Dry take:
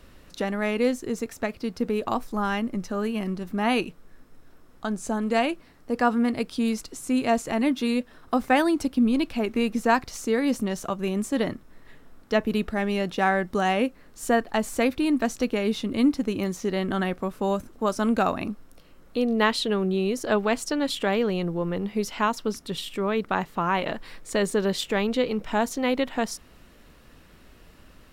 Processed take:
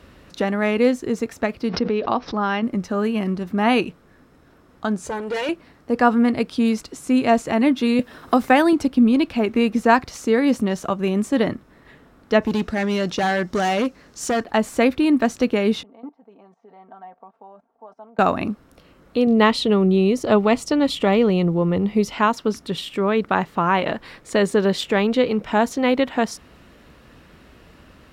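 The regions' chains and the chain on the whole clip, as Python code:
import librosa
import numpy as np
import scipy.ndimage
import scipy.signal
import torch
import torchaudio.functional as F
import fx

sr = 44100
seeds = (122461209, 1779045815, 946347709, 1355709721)

y = fx.chain(x, sr, fx.cheby1_lowpass(hz=5600.0, order=5),
    fx.low_shelf(hz=150.0, db=-9.5),
    fx.pre_swell(db_per_s=89.0), at=(1.69, 2.63))
y = fx.chain(y, sr, fx.comb(ms=2.1, depth=0.67),
    fx.tube_stage(drive_db=27.0, bias=0.4), at=(5.05, 5.49))
y = fx.chain(y, sr, fx.high_shelf(hz=11000.0, db=8.0),
    fx.band_squash(depth_pct=40), at=(7.99, 8.73))
y = fx.chain(y, sr, fx.peak_eq(hz=5900.0, db=11.5, octaves=0.99),
    fx.clip_hard(threshold_db=-22.5), at=(12.42, 14.44))
y = fx.chain(y, sr, fx.level_steps(step_db=18),
    fx.bandpass_q(hz=770.0, q=5.5),
    fx.comb(ms=4.4, depth=0.7), at=(15.83, 18.19))
y = fx.chain(y, sr, fx.low_shelf(hz=150.0, db=8.0),
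    fx.notch(hz=1600.0, q=5.2), at=(19.27, 22.14))
y = scipy.signal.sosfilt(scipy.signal.butter(2, 52.0, 'highpass', fs=sr, output='sos'), y)
y = fx.high_shelf(y, sr, hz=6000.0, db=-10.0)
y = F.gain(torch.from_numpy(y), 6.0).numpy()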